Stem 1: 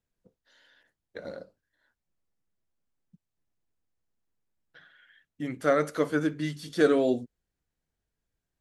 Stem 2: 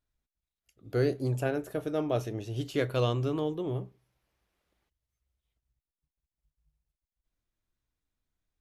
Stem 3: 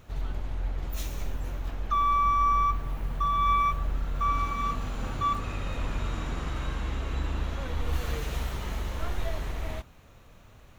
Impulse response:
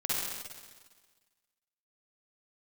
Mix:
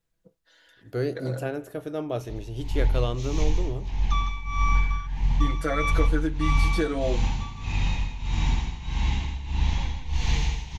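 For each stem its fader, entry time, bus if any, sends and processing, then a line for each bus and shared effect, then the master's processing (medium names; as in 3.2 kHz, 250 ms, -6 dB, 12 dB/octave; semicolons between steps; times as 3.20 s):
+1.5 dB, 0.00 s, no send, no echo send, comb 6.1 ms, depth 86%; compression 3:1, threshold -27 dBFS, peak gain reduction 10.5 dB
-0.5 dB, 0.00 s, no send, echo send -23.5 dB, none
+0.5 dB, 2.20 s, no send, echo send -7.5 dB, FFT filter 170 Hz 0 dB, 600 Hz -18 dB, 880 Hz +3 dB, 1.3 kHz -19 dB, 2.1 kHz 0 dB, 6.5 kHz +2 dB, 10 kHz -26 dB; level rider gain up to 8.5 dB; tremolo 1.6 Hz, depth 90%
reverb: none
echo: delay 159 ms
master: none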